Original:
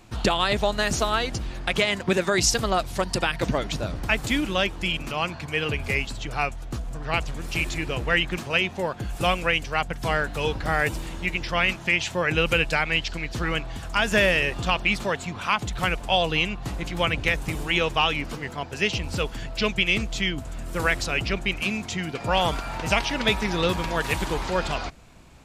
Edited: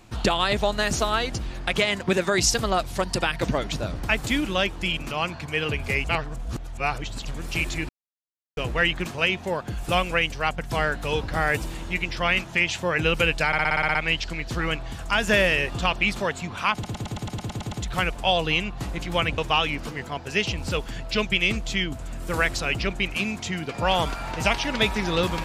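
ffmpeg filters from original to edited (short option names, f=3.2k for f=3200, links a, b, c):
-filter_complex "[0:a]asplit=22[a][b][c][d][e][f][g][h][i][j][k][l][m][n][o][p][q][r][s][t][u][v];[a]atrim=end=6.042[w];[b]atrim=start=6.038:end=7.252,asetpts=PTS-STARTPTS,areverse[x];[c]atrim=start=7.248:end=7.89,asetpts=PTS-STARTPTS,afade=t=out:st=0.638:d=0.004:c=hsin,apad=pad_dur=0.68[y];[d]atrim=start=7.89:end=12.852,asetpts=PTS-STARTPTS,afade=t=in:d=0.004:c=hsin[z];[e]atrim=start=12.788:end=12.852[aa];[f]atrim=start=12.788:end=12.852[ab];[g]atrim=start=12.788:end=12.852[ac];[h]atrim=start=12.788:end=12.852[ad];[i]atrim=start=12.788:end=12.852[ae];[j]atrim=start=12.788:end=12.852[af];[k]atrim=start=12.788:end=12.852[ag];[l]atrim=start=12.788:end=15.682[ah];[m]atrim=start=15.568:end=15.682[ai];[n]atrim=start=15.568:end=15.682[aj];[o]atrim=start=15.568:end=15.682[ak];[p]atrim=start=15.568:end=15.682[al];[q]atrim=start=15.568:end=15.682[am];[r]atrim=start=15.568:end=15.682[an];[s]atrim=start=15.568:end=15.682[ao];[t]atrim=start=15.568:end=15.682[ap];[u]atrim=start=15.568:end=17.232[aq];[v]atrim=start=17.838[ar];[w][x]acrossfade=d=0.004:c1=hsin:c2=hsin[as];[y][z]concat=n=2:v=0:a=1[at];[as][at]acrossfade=d=0.004:c1=hsin:c2=hsin[au];[au][aa]acrossfade=d=0.004:c1=hsin:c2=hsin[av];[av][ab]acrossfade=d=0.004:c1=hsin:c2=hsin[aw];[aw][ac]acrossfade=d=0.004:c1=hsin:c2=hsin[ax];[ax][ad]acrossfade=d=0.004:c1=hsin:c2=hsin[ay];[ay][ae]acrossfade=d=0.004:c1=hsin:c2=hsin[az];[az][af]acrossfade=d=0.004:c1=hsin:c2=hsin[ba];[ba][ag]acrossfade=d=0.004:c1=hsin:c2=hsin[bb];[bb][ah]acrossfade=d=0.004:c1=hsin:c2=hsin[bc];[bc][ai]acrossfade=d=0.004:c1=hsin:c2=hsin[bd];[bd][aj]acrossfade=d=0.004:c1=hsin:c2=hsin[be];[be][ak]acrossfade=d=0.004:c1=hsin:c2=hsin[bf];[bf][al]acrossfade=d=0.004:c1=hsin:c2=hsin[bg];[bg][am]acrossfade=d=0.004:c1=hsin:c2=hsin[bh];[bh][an]acrossfade=d=0.004:c1=hsin:c2=hsin[bi];[bi][ao]acrossfade=d=0.004:c1=hsin:c2=hsin[bj];[bj][ap]acrossfade=d=0.004:c1=hsin:c2=hsin[bk];[bk][aq]acrossfade=d=0.004:c1=hsin:c2=hsin[bl];[bl][ar]acrossfade=d=0.004:c1=hsin:c2=hsin"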